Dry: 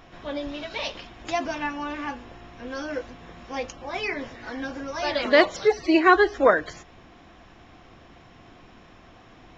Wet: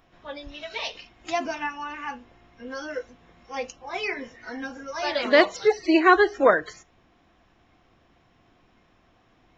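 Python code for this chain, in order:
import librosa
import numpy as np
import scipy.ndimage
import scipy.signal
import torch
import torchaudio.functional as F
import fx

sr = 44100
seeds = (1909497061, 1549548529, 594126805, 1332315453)

y = fx.noise_reduce_blind(x, sr, reduce_db=11)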